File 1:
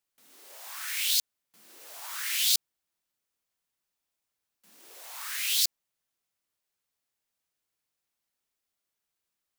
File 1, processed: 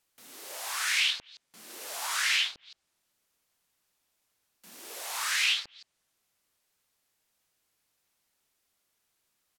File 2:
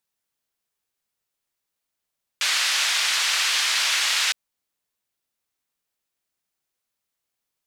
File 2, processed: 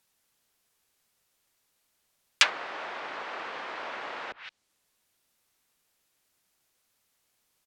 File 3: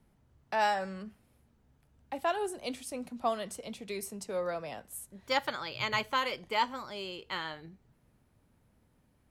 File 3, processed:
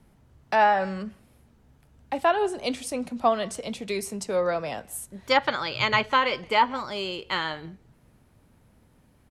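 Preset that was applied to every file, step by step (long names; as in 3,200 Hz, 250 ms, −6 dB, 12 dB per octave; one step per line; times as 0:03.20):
far-end echo of a speakerphone 170 ms, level −25 dB
treble cut that deepens with the level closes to 490 Hz, closed at −19 dBFS
level +9 dB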